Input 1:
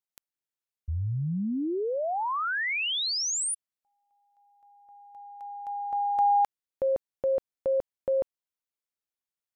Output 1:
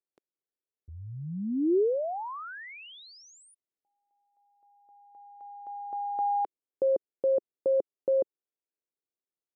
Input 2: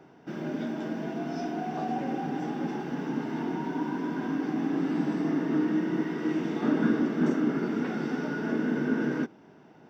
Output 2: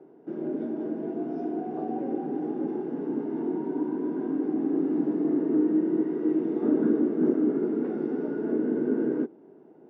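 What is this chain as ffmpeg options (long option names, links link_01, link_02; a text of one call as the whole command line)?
ffmpeg -i in.wav -af "bandpass=frequency=380:width_type=q:width=2.3:csg=0,volume=6.5dB" out.wav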